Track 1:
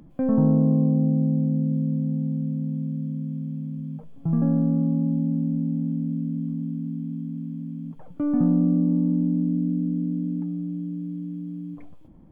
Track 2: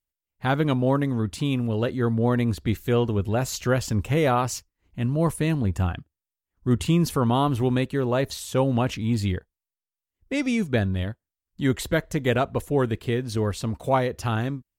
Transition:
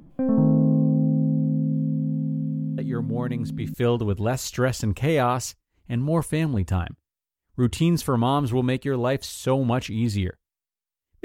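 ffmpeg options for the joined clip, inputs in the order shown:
-filter_complex "[1:a]asplit=2[s0][s1];[0:a]apad=whole_dur=11.24,atrim=end=11.24,atrim=end=3.742[s2];[s1]atrim=start=2.818:end=10.32[s3];[s0]atrim=start=1.86:end=2.82,asetpts=PTS-STARTPTS,volume=0.447,afade=t=in:d=0.004:c=hsin,afade=t=out:st=0.956:d=0.004:c=hsin,adelay=2780[s4];[s2][s3]acrossfade=d=0.004:c1=hsin:c2=hsin[s5];[s5][s4]amix=inputs=2:normalize=0"

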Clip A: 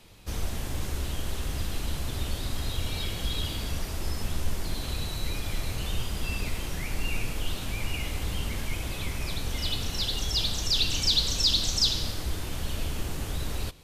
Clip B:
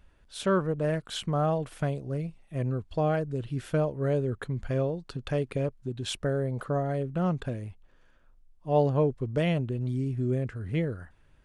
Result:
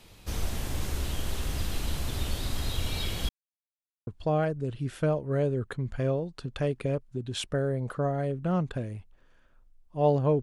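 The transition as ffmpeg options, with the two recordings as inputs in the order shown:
-filter_complex "[0:a]apad=whole_dur=10.42,atrim=end=10.42,asplit=2[s0][s1];[s0]atrim=end=3.29,asetpts=PTS-STARTPTS,afade=t=out:st=3.286:d=0.004:c=hsin[s2];[s1]atrim=start=3.29:end=4.07,asetpts=PTS-STARTPTS,volume=0[s3];[1:a]atrim=start=2.78:end=9.13,asetpts=PTS-STARTPTS,afade=t=in:d=0.004:c=hsin[s4];[s2][s3][s4]concat=n=3:v=0:a=1"

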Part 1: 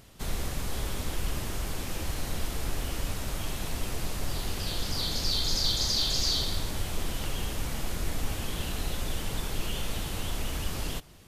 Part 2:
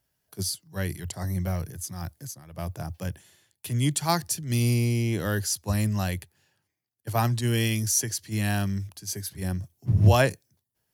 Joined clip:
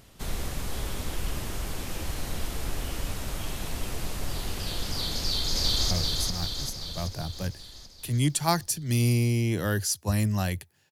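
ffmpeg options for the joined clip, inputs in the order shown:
-filter_complex "[0:a]apad=whole_dur=10.91,atrim=end=10.91,atrim=end=5.912[s0];[1:a]atrim=start=1.518:end=6.52[s1];[s0][s1]acrossfade=d=0.004:c1=hsin:c2=hsin,asplit=2[s2][s3];[s3]afade=t=in:st=5.16:d=0.01,afade=t=out:st=5.91:d=0.01,aecho=0:1:390|780|1170|1560|1950|2340|2730|3120|3510:0.749894|0.449937|0.269962|0.161977|0.0971863|0.0583118|0.0349871|0.0209922|0.0125953[s4];[s2][s4]amix=inputs=2:normalize=0"

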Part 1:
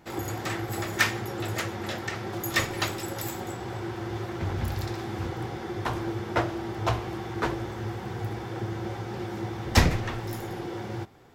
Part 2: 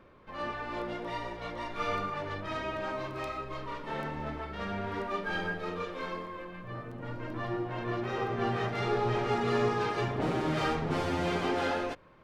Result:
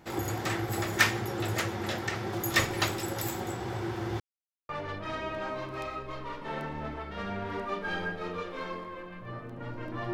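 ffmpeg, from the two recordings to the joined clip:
-filter_complex "[0:a]apad=whole_dur=10.13,atrim=end=10.13,asplit=2[s0][s1];[s0]atrim=end=4.2,asetpts=PTS-STARTPTS,afade=t=out:st=4.196:d=0.004:c=hsin[s2];[s1]atrim=start=4.2:end=4.69,asetpts=PTS-STARTPTS,volume=0[s3];[1:a]atrim=start=2.11:end=7.55,asetpts=PTS-STARTPTS,afade=t=in:d=0.004:c=hsin[s4];[s2][s3][s4]concat=n=3:v=0:a=1"

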